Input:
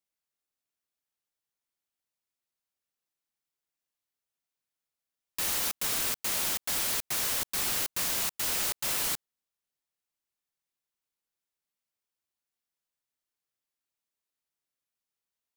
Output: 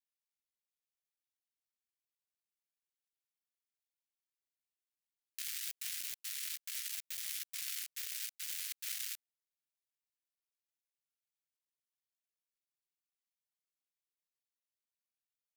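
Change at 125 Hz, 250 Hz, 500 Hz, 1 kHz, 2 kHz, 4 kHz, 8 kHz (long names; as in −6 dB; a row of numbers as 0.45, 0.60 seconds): below −40 dB, below −40 dB, below −40 dB, −27.5 dB, −12.5 dB, −11.0 dB, −11.5 dB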